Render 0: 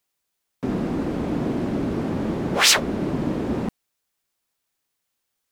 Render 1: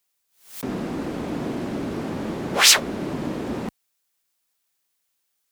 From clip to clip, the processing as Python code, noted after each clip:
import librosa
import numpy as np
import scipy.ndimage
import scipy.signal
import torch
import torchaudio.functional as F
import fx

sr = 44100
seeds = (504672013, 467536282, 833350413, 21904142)

y = fx.tilt_eq(x, sr, slope=1.5)
y = fx.pre_swell(y, sr, db_per_s=130.0)
y = y * 10.0 ** (-1.0 / 20.0)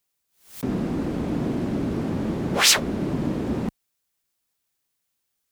y = fx.low_shelf(x, sr, hz=290.0, db=10.5)
y = y * 10.0 ** (-3.0 / 20.0)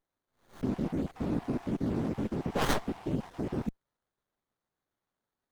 y = fx.spec_dropout(x, sr, seeds[0], share_pct=36)
y = fx.running_max(y, sr, window=17)
y = y * 10.0 ** (-4.5 / 20.0)